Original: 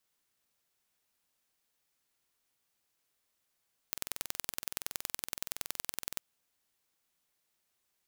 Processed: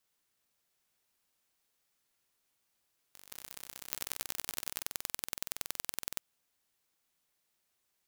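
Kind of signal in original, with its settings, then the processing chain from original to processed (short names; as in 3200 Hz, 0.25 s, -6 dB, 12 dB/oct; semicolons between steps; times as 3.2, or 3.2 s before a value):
pulse train 21.4/s, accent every 2, -6 dBFS 2.26 s
echoes that change speed 0.701 s, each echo +7 st, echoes 2, each echo -6 dB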